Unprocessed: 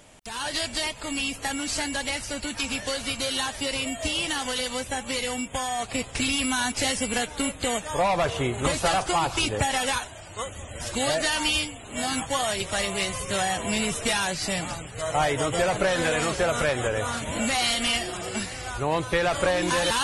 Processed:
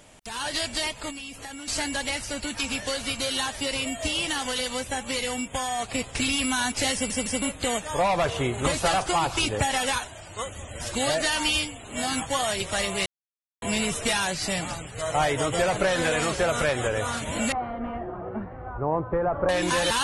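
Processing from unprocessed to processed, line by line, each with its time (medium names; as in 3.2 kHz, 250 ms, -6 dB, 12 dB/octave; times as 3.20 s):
1.10–1.68 s: compression 3:1, threshold -38 dBFS
6.94 s: stutter in place 0.16 s, 3 plays
13.06–13.62 s: mute
17.52–19.49 s: low-pass 1.2 kHz 24 dB/octave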